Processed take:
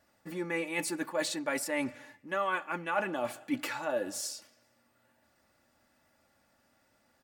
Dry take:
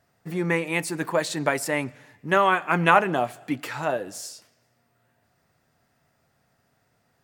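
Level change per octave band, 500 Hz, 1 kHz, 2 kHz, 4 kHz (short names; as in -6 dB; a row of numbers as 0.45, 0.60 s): -9.0, -12.5, -9.5, -6.0 dB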